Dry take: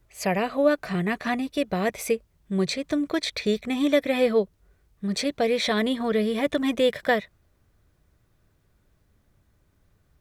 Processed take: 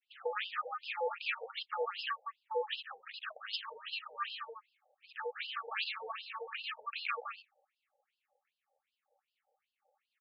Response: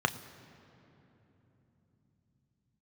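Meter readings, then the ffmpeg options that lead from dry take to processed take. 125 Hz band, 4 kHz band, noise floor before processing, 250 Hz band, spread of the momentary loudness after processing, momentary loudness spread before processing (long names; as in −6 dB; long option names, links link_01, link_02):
below −40 dB, −8.5 dB, −66 dBFS, below −40 dB, 8 LU, 5 LU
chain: -af "aemphasis=mode=reproduction:type=50fm,agate=range=-33dB:threshold=-54dB:ratio=3:detection=peak,highpass=180,equalizer=frequency=730:width_type=o:width=1.1:gain=-10,acompressor=threshold=-35dB:ratio=6,aeval=exprs='val(0)*sin(2*PI*680*n/s)':channel_layout=same,asuperstop=centerf=980:order=4:qfactor=2.7,aecho=1:1:166:0.531,afftfilt=real='re*between(b*sr/1024,620*pow(3800/620,0.5+0.5*sin(2*PI*2.6*pts/sr))/1.41,620*pow(3800/620,0.5+0.5*sin(2*PI*2.6*pts/sr))*1.41)':imag='im*between(b*sr/1024,620*pow(3800/620,0.5+0.5*sin(2*PI*2.6*pts/sr))/1.41,620*pow(3800/620,0.5+0.5*sin(2*PI*2.6*pts/sr))*1.41)':win_size=1024:overlap=0.75,volume=12dB"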